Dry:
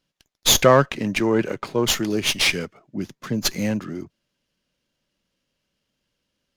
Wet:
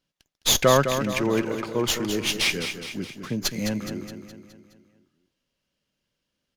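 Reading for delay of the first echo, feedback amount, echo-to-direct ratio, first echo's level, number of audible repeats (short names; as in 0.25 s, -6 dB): 0.209 s, 52%, -7.0 dB, -8.5 dB, 5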